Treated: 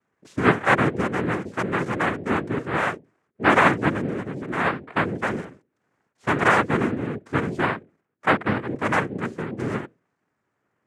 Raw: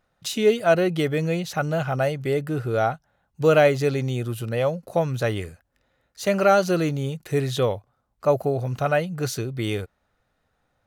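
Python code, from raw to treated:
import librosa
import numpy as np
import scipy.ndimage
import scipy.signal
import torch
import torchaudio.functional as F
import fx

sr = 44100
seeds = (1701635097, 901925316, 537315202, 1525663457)

y = scipy.signal.sosfilt(scipy.signal.butter(2, 1100.0, 'lowpass', fs=sr, output='sos'), x)
y = fx.hum_notches(y, sr, base_hz=60, count=5)
y = fx.noise_vocoder(y, sr, seeds[0], bands=3)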